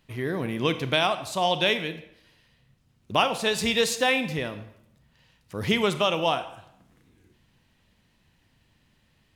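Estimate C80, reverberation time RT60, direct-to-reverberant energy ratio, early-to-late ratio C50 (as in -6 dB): 14.5 dB, 0.75 s, 10.0 dB, 12.5 dB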